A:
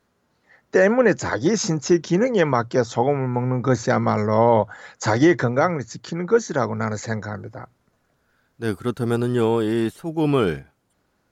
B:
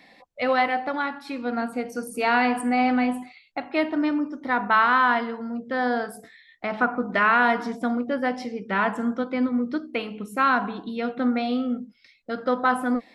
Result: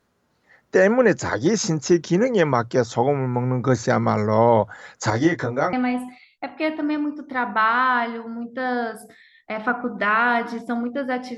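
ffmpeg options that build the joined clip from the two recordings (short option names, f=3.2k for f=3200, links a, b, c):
-filter_complex "[0:a]asettb=1/sr,asplit=3[a][b][c];[a]atrim=end=5.104[d];[b]atrim=start=5.1:end=5.73,asetpts=PTS-STARTPTS,afade=t=in:d=0.004:c=qsin,afade=t=out:st=0.626:d=0.004:c=qsin,flanger=delay=18:depth=2.5:speed=0.6[e];[c]atrim=start=5.726[f];[d][e]acrossfade=d=0.004:c1=hsin:c2=qsin[g];[g][f]acrossfade=d=0.004:c1=qsin:c2=hsin,apad=whole_dur=11.37,atrim=end=11.37,atrim=end=5.732[h];[1:a]atrim=start=2.868:end=8.51[i];[h][i]acrossfade=d=0.004:c1=hsin:c2=hsin"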